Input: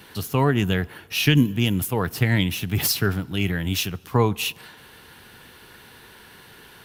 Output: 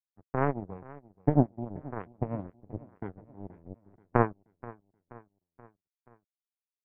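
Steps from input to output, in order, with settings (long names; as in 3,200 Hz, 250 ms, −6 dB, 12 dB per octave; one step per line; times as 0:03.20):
inverse Chebyshev low-pass filter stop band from 2,500 Hz, stop band 50 dB
power curve on the samples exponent 3
repeating echo 479 ms, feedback 53%, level −20 dB
level +2.5 dB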